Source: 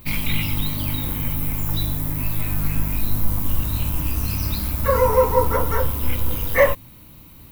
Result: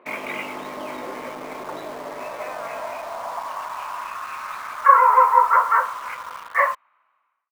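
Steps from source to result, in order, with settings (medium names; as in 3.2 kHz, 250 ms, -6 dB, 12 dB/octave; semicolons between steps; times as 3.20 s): fade out at the end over 1.72 s; peaking EQ 420 Hz -2 dB 0.4 oct; high-pass sweep 380 Hz -> 1.2 kHz, 1.81–4.20 s; cabinet simulation 300–2100 Hz, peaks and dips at 310 Hz -7 dB, 640 Hz +6 dB, 1.1 kHz +4 dB; in parallel at -7 dB: word length cut 6-bit, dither none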